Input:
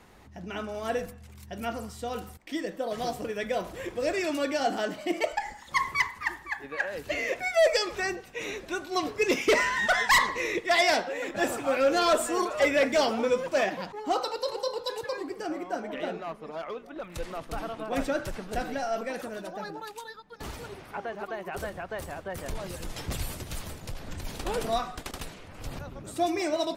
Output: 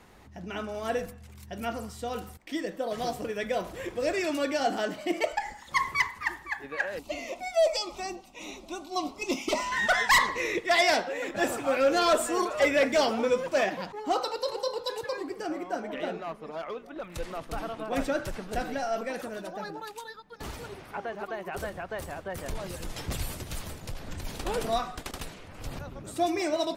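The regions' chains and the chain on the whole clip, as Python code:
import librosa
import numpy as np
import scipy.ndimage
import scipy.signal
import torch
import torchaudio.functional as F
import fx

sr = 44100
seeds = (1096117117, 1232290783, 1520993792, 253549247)

y = fx.chain(x, sr, fx.high_shelf(hz=11000.0, db=-7.0),
    fx.fixed_phaser(hz=450.0, stages=6), at=(6.99, 9.72))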